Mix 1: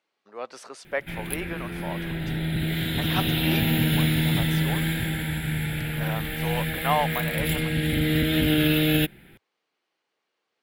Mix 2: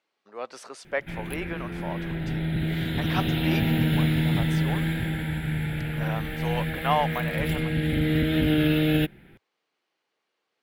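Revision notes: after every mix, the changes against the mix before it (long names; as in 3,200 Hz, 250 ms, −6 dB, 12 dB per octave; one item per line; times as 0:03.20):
background: add high-shelf EQ 3,300 Hz −11.5 dB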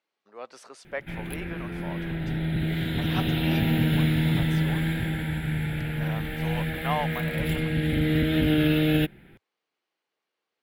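speech −5.0 dB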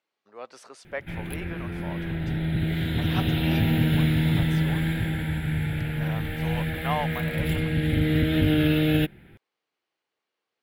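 master: add parametric band 91 Hz +14.5 dB 0.33 octaves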